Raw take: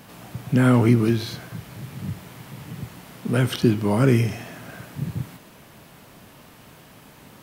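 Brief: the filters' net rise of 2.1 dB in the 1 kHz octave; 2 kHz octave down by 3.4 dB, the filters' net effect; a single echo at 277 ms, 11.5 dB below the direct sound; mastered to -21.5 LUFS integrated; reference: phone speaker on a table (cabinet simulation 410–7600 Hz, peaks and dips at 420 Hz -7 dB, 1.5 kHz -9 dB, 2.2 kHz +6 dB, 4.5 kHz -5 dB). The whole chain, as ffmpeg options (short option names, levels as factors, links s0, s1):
-af "highpass=f=410:w=0.5412,highpass=f=410:w=1.3066,equalizer=f=420:t=q:w=4:g=-7,equalizer=f=1500:t=q:w=4:g=-9,equalizer=f=2200:t=q:w=4:g=6,equalizer=f=4500:t=q:w=4:g=-5,lowpass=f=7600:w=0.5412,lowpass=f=7600:w=1.3066,equalizer=f=1000:t=o:g=6,equalizer=f=2000:t=o:g=-5,aecho=1:1:277:0.266,volume=2.82"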